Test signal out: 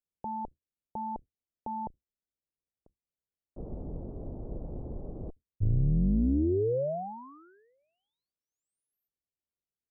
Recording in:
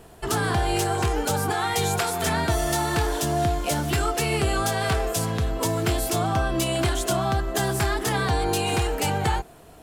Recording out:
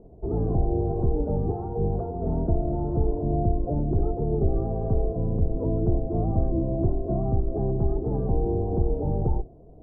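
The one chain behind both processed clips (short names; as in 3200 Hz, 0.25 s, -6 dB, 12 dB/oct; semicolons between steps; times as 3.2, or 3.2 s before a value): octaver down 2 oct, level 0 dB; inverse Chebyshev low-pass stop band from 2000 Hz, stop band 60 dB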